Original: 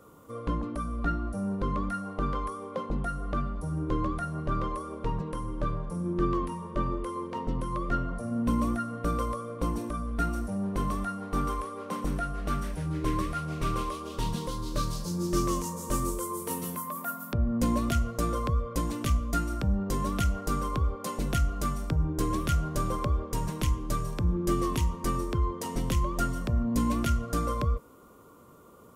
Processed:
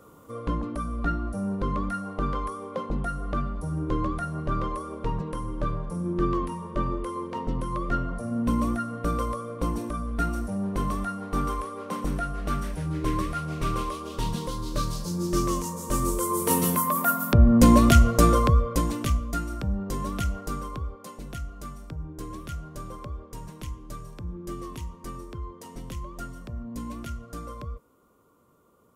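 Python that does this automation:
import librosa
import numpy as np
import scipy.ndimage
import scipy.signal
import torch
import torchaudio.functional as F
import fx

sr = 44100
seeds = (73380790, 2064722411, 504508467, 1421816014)

y = fx.gain(x, sr, db=fx.line((15.89, 2.0), (16.56, 11.0), (18.25, 11.0), (19.35, -1.0), (20.34, -1.0), (21.19, -9.0)))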